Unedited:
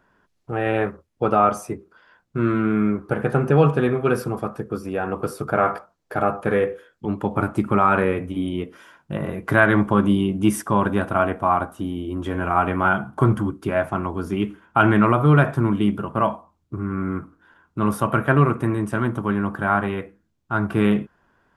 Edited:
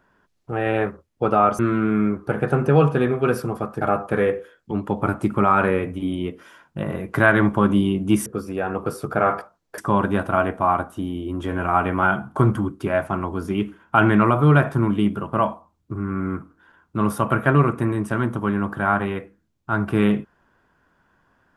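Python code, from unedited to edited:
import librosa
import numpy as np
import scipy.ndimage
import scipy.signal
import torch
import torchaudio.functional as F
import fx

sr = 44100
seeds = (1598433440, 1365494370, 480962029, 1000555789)

y = fx.edit(x, sr, fx.cut(start_s=1.59, length_s=0.82),
    fx.move(start_s=4.63, length_s=1.52, to_s=10.6), tone=tone)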